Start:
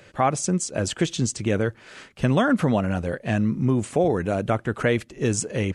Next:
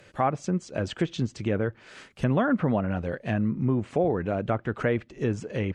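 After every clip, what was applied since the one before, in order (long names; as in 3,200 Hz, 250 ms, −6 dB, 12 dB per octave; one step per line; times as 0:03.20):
treble cut that deepens with the level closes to 2,000 Hz, closed at −18.5 dBFS
level −3.5 dB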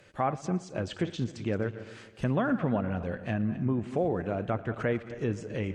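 feedback delay that plays each chunk backwards 132 ms, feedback 52%, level −13 dB
tape delay 116 ms, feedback 56%, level −19.5 dB, low-pass 5,100 Hz
level −4 dB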